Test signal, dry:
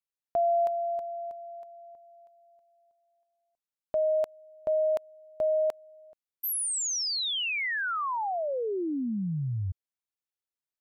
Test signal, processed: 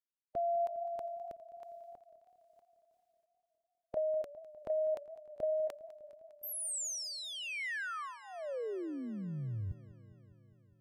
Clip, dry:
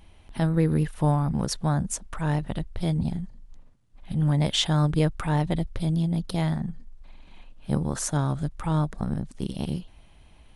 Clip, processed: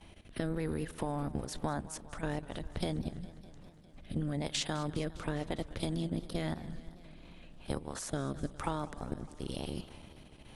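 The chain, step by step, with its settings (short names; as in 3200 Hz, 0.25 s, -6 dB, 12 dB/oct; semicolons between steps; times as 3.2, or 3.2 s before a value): spectral limiter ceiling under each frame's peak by 14 dB; level quantiser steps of 13 dB; rotary speaker horn 1 Hz; compressor 5:1, threshold -33 dBFS; warbling echo 0.203 s, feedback 72%, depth 139 cents, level -18 dB; gain +1.5 dB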